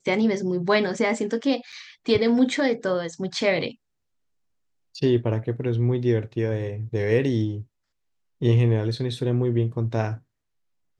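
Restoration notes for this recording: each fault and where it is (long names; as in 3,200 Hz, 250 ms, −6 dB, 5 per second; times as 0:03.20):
0:01.72–0:01.73: drop-out 5.7 ms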